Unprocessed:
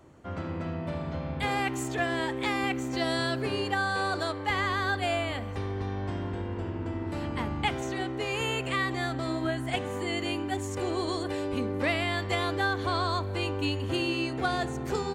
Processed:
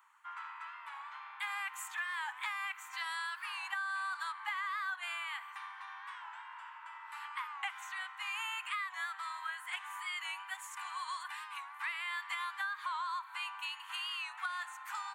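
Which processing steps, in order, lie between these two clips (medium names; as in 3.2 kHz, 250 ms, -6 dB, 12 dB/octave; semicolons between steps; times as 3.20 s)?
steep high-pass 920 Hz 72 dB/octave; peaking EQ 5.1 kHz -13 dB 1.3 oct; compression 6:1, threshold -36 dBFS, peak gain reduction 8.5 dB; warped record 45 rpm, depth 100 cents; trim +1 dB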